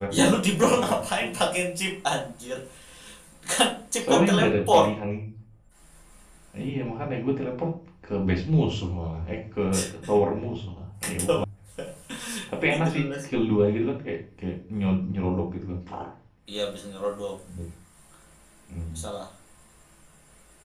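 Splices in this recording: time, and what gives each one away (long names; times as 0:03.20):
0:11.44: cut off before it has died away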